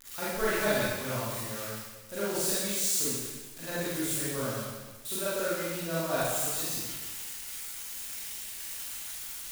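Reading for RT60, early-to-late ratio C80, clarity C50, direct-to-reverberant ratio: 1.3 s, 0.0 dB, -4.0 dB, -10.0 dB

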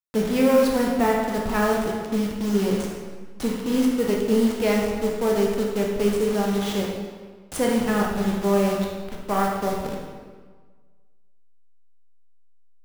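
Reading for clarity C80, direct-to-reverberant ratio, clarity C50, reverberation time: 3.5 dB, -1.5 dB, 2.0 dB, 1.5 s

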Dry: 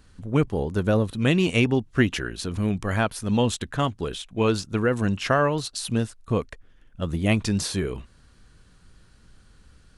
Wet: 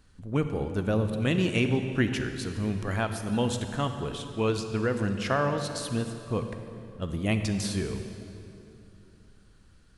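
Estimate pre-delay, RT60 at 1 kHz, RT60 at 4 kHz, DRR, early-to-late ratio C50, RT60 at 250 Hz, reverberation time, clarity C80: 34 ms, 2.7 s, 2.2 s, 7.0 dB, 7.5 dB, 3.4 s, 2.9 s, 8.0 dB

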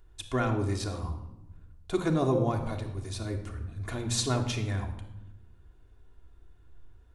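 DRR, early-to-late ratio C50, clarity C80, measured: 2.0 dB, 8.5 dB, 11.0 dB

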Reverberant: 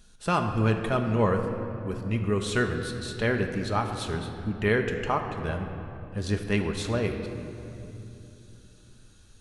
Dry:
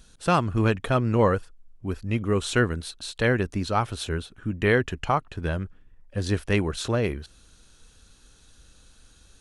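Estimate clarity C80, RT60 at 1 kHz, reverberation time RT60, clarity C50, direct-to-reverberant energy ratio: 7.0 dB, 2.5 s, 2.9 s, 6.5 dB, 3.5 dB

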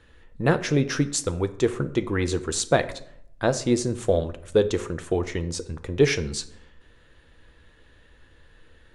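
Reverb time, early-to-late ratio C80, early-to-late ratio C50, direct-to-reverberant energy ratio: 0.65 s, 18.5 dB, 15.5 dB, 10.0 dB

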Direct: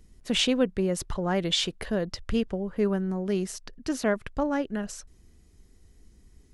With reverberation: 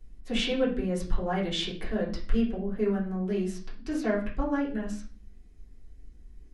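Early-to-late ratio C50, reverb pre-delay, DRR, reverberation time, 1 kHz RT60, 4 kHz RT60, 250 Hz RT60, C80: 7.5 dB, 3 ms, -8.0 dB, 0.40 s, 0.35 s, 0.40 s, 0.65 s, 13.0 dB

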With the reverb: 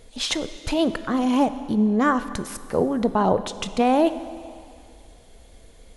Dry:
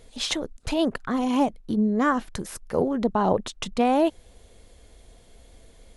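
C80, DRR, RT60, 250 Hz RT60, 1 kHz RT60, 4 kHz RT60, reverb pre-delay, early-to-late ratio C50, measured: 14.0 dB, 12.0 dB, 2.3 s, 2.1 s, 2.4 s, 2.3 s, 19 ms, 13.0 dB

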